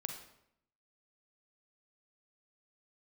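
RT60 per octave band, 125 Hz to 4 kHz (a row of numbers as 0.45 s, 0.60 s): 0.85 s, 0.90 s, 0.75 s, 0.70 s, 0.65 s, 0.60 s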